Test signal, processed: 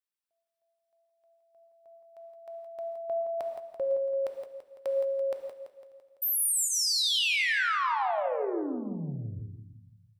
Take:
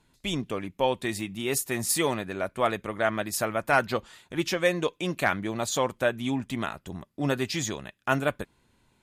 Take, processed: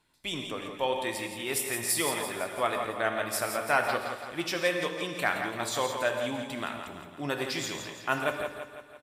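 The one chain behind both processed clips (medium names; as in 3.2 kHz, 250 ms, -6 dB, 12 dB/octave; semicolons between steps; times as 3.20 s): bass shelf 350 Hz -10.5 dB; band-stop 6.6 kHz, Q 8.2; on a send: feedback delay 168 ms, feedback 55%, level -9 dB; on the sum: gated-style reverb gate 200 ms flat, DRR 5 dB; trim -2 dB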